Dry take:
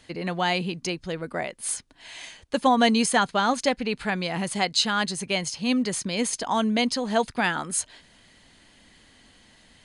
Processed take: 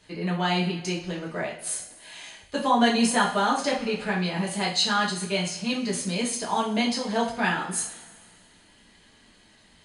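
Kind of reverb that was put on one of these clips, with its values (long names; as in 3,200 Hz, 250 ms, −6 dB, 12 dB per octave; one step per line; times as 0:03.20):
coupled-rooms reverb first 0.4 s, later 1.9 s, from −18 dB, DRR −4.5 dB
level −6.5 dB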